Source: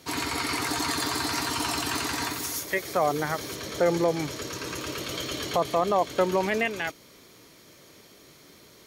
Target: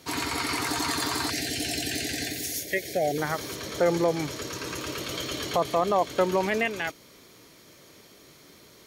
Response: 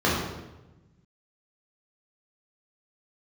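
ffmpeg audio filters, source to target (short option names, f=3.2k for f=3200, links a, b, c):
-filter_complex "[0:a]asettb=1/sr,asplit=3[a][b][c];[a]atrim=end=1.304[d];[b]atrim=start=1.3:end=3.18,asetpts=PTS-STARTPTS,afade=t=in:d=0.004:c=qsin,afade=t=out:st=1.876:d=0.004:c=qsin,asuperstop=centerf=1100:order=8:qfactor=1.2[e];[c]atrim=start=3.176[f];[d][e]acrossfade=d=0.004:c1=hsin:c2=qsin[g];[g][f]acrossfade=d=0.004:c1=qsin:c2=hsin"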